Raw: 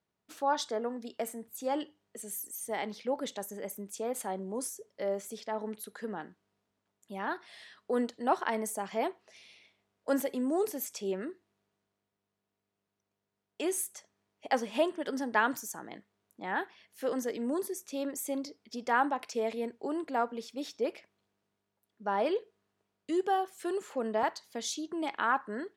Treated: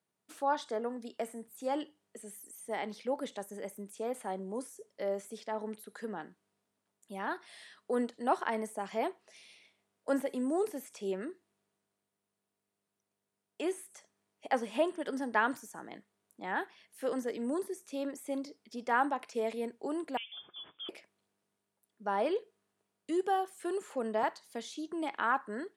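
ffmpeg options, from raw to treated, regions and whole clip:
-filter_complex "[0:a]asettb=1/sr,asplit=3[s0][s1][s2];[s0]atrim=end=20.174[s3];[s1]atrim=start=20.17:end=20.89,asetpts=PTS-STARTPTS,afade=t=in:d=0.004:c=qsin,afade=t=out:st=0.716:d=0.004:c=qsin,bandreject=f=1800:w=16,acompressor=threshold=0.01:ratio=2.5:attack=3.2:release=140:knee=1:detection=peak,lowpass=f=3100:t=q:w=0.5098,lowpass=f=3100:t=q:w=0.6013,lowpass=f=3100:t=q:w=0.9,lowpass=f=3100:t=q:w=2.563,afreqshift=-3700[s4];[s2]atrim=start=20.886[s5];[s3][s4]acrossfade=d=0.004:c1=hsin:c2=qsin[s6];[s6][s5]acrossfade=d=0.004:c1=qsin:c2=hsin,highpass=120,equalizer=f=9300:w=1.9:g=9.5,acrossover=split=3100[s7][s8];[s8]acompressor=threshold=0.00355:ratio=4:attack=1:release=60[s9];[s7][s9]amix=inputs=2:normalize=0,volume=0.841"

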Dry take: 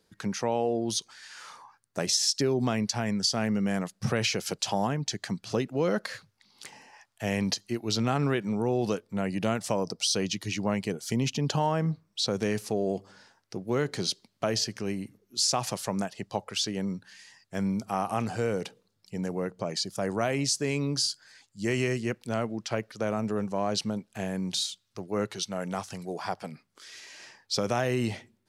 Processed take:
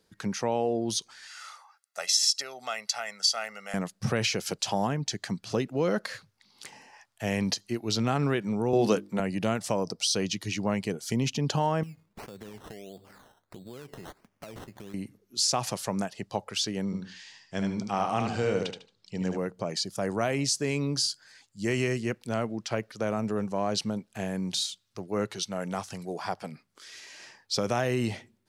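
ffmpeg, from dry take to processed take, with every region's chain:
-filter_complex "[0:a]asettb=1/sr,asplit=3[s0][s1][s2];[s0]atrim=end=1.274[s3];[s1]atrim=start=1.27:end=3.74,asetpts=PTS-STARTPTS,afade=t=in:d=0.004:c=qsin,afade=t=out:st=2.466:d=0.004:c=qsin,highpass=970,aecho=1:1:1.5:0.68,atrim=end_sample=108927[s4];[s2]atrim=start=3.736[s5];[s3][s4]acrossfade=d=0.004:c1=hsin:c2=qsin[s6];[s6][s5]acrossfade=d=0.004:c1=qsin:c2=hsin,asettb=1/sr,asplit=3[s7][s8][s9];[s7]atrim=end=8.734[s10];[s8]atrim=start=8.73:end=9.2,asetpts=PTS-STARTPTS,afade=t=in:d=0.004:c=qsin,afade=t=out:st=0.466:d=0.004:c=qsin,highpass=f=130:w=0.5412,highpass=f=130:w=1.3066,bandreject=f=50:t=h:w=6,bandreject=f=100:t=h:w=6,bandreject=f=150:t=h:w=6,bandreject=f=200:t=h:w=6,bandreject=f=250:t=h:w=6,bandreject=f=300:t=h:w=6,bandreject=f=350:t=h:w=6,acontrast=34[s11];[s9]atrim=start=9.196[s12];[s10][s11]acrossfade=d=0.004:c1=hsin:c2=qsin[s13];[s13][s12]acrossfade=d=0.004:c1=qsin:c2=hsin,asettb=1/sr,asplit=3[s14][s15][s16];[s14]atrim=end=11.834[s17];[s15]atrim=start=11.83:end=14.94,asetpts=PTS-STARTPTS,afade=t=in:d=0.004:c=qsin,afade=t=out:st=3.106:d=0.004:c=qsin,acompressor=threshold=0.01:ratio=8:attack=3.2:release=140:knee=1:detection=peak,acrusher=samples=15:mix=1:aa=0.000001:lfo=1:lforange=9:lforate=1.5[s18];[s16]atrim=start=14.936[s19];[s17][s18]acrossfade=d=0.004:c1=hsin:c2=qsin[s20];[s20][s19]acrossfade=d=0.004:c1=qsin:c2=hsin,asettb=1/sr,asplit=3[s21][s22][s23];[s21]atrim=end=16.854[s24];[s22]atrim=start=16.85:end=19.38,asetpts=PTS-STARTPTS,afade=t=in:d=0.004:c=qsin,afade=t=out:st=2.526:d=0.004:c=qsin,lowpass=f=7700:w=0.5412,lowpass=f=7700:w=1.3066,equalizer=f=3400:t=o:w=0.78:g=6.5,aecho=1:1:75|150|225:0.562|0.146|0.038,atrim=end_sample=111573[s25];[s23]atrim=start=19.376[s26];[s24][s25]acrossfade=d=0.004:c1=hsin:c2=qsin[s27];[s27][s26]acrossfade=d=0.004:c1=qsin:c2=hsin"

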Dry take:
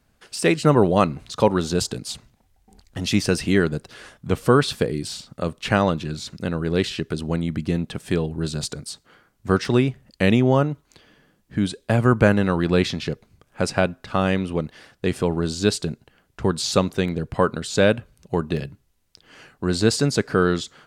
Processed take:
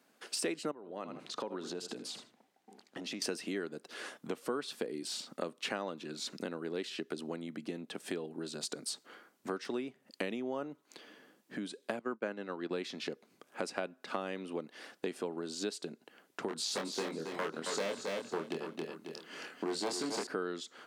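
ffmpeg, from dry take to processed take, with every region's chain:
-filter_complex "[0:a]asettb=1/sr,asplit=3[s0][s1][s2];[s0]atrim=end=0.714[s3];[s1]atrim=start=0.71:end=3.22,asetpts=PTS-STARTPTS,afade=t=in:d=0.004:c=qsin,afade=t=out:st=2.506:d=0.004:c=qsin,aecho=1:1:78|156:0.158|0.0269,atrim=end_sample=110691,acompressor=threshold=0.02:ratio=4:attack=3.2:release=140:knee=1:detection=peak,highshelf=f=6600:g=-11.5[s4];[s2]atrim=start=3.216[s5];[s3][s4]acrossfade=d=0.004:c1=hsin:c2=qsin[s6];[s6][s5]acrossfade=d=0.004:c1=qsin:c2=hsin,asettb=1/sr,asplit=3[s7][s8][s9];[s7]atrim=end=11.994[s10];[s8]atrim=start=11.99:end=12.71,asetpts=PTS-STARTPTS,afade=t=in:d=0.004:c=qsin,afade=t=out:st=0.716:d=0.004:c=qsin,highpass=150,lowpass=6200,agate=range=0.0224:threshold=0.141:ratio=3:release=100:detection=peak[s11];[s9]atrim=start=12.706[s12];[s10][s11]acrossfade=d=0.004:c1=hsin:c2=qsin[s13];[s13][s12]acrossfade=d=0.004:c1=qsin:c2=hsin,asettb=1/sr,asplit=3[s14][s15][s16];[s14]atrim=end=16.484[s17];[s15]atrim=start=16.48:end=20.27,asetpts=PTS-STARTPTS,afade=t=in:d=0.004:c=qsin,afade=t=out:st=3.786:d=0.004:c=qsin,aeval=exprs='0.211*(abs(mod(val(0)/0.211+3,4)-2)-1)':c=same,asplit=2[s18][s19];[s19]adelay=25,volume=0.631[s20];[s18][s20]amix=inputs=2:normalize=0,atrim=end_sample=167139,aecho=1:1:271|542|813:0.447|0.112|0.0279,atrim=end_sample=167139[s21];[s16]atrim=start=20.266[s22];[s17][s21]acrossfade=d=0.004:c1=hsin:c2=qsin[s23];[s23][s22]acrossfade=d=0.004:c1=qsin:c2=hsin,acompressor=threshold=0.0224:ratio=6,highpass=f=250:w=0.5412,highpass=f=250:w=1.3066,lowshelf=f=400:g=2.5,volume=0.891"

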